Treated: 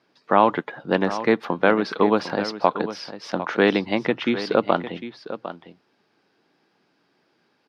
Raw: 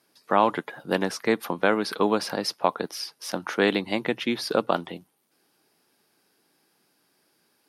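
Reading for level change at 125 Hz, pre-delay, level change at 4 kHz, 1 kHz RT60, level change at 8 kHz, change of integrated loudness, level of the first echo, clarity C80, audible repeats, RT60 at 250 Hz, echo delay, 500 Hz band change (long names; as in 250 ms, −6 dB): +4.5 dB, no reverb audible, −1.0 dB, no reverb audible, can't be measured, +3.5 dB, −12.5 dB, no reverb audible, 1, no reverb audible, 753 ms, +4.5 dB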